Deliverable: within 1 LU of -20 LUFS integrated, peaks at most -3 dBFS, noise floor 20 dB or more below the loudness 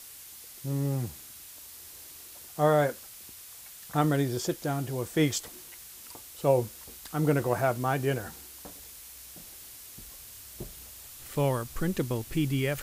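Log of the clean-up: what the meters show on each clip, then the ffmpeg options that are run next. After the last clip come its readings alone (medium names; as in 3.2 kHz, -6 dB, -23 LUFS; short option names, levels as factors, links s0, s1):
noise floor -47 dBFS; noise floor target -49 dBFS; loudness -29.0 LUFS; peak level -10.0 dBFS; loudness target -20.0 LUFS
-> -af "afftdn=nr=6:nf=-47"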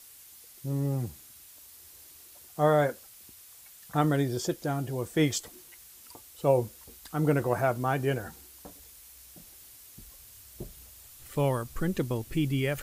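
noise floor -52 dBFS; loudness -29.0 LUFS; peak level -10.0 dBFS; loudness target -20.0 LUFS
-> -af "volume=2.82,alimiter=limit=0.708:level=0:latency=1"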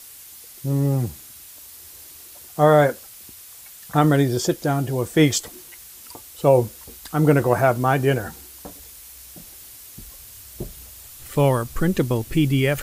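loudness -20.5 LUFS; peak level -3.0 dBFS; noise floor -43 dBFS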